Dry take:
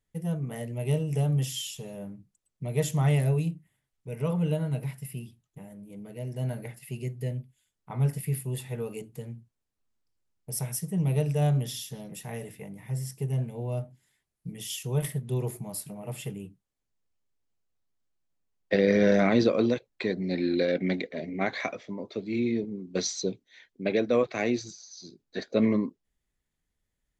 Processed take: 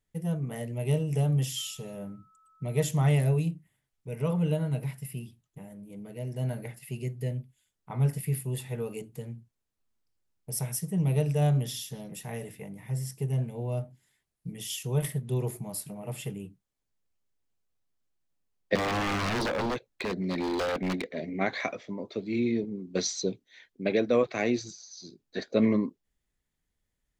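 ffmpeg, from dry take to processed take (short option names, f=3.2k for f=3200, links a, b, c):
-filter_complex "[0:a]asettb=1/sr,asplit=3[a][b][c];[a]atrim=end=1.584[d];[b]atrim=start=1.58:end=2.81,asetpts=PTS-STARTPTS,afade=t=in:d=0.004:c=qsin,afade=t=out:st=1.226:d=0.004:c=qsin,aeval=exprs='val(0)+0.001*sin(2*PI*1300*n/s)':c=same[e];[c]atrim=start=2.806[f];[d][e]acrossfade=d=0.004:c1=hsin:c2=qsin[g];[g][f]acrossfade=d=0.004:c1=qsin:c2=hsin,asettb=1/sr,asplit=3[h][i][j];[h]atrim=end=18.754[k];[i]atrim=start=18.75:end=21.11,asetpts=PTS-STARTPTS,afade=t=in:d=0.004:c=qsin,afade=t=out:st=2.356:d=0.004:c=qsin,aeval=exprs='0.0631*(abs(mod(val(0)/0.0631+3,4)-2)-1)':c=same[l];[j]atrim=start=21.106[m];[k][l]acrossfade=d=0.004:c1=hsin:c2=qsin[n];[n][m]acrossfade=d=0.004:c1=qsin:c2=hsin"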